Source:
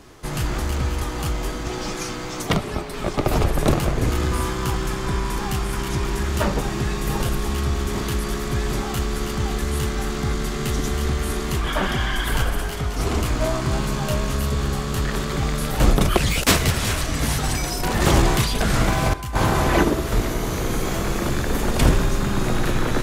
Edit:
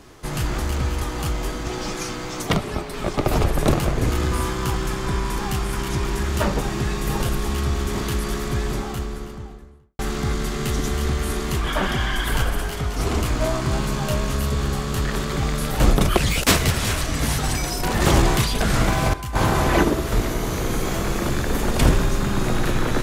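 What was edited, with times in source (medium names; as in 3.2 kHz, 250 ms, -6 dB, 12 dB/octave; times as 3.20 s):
8.39–9.99 s: studio fade out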